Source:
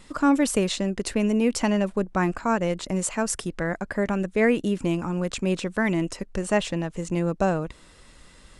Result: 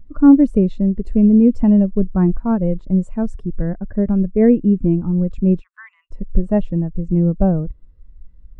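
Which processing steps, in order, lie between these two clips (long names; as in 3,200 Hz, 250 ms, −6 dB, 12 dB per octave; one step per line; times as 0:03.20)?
0:05.61–0:06.11: elliptic high-pass filter 1,100 Hz, stop band 60 dB
spectral tilt −3.5 dB per octave
every bin expanded away from the loudest bin 1.5 to 1
level +1.5 dB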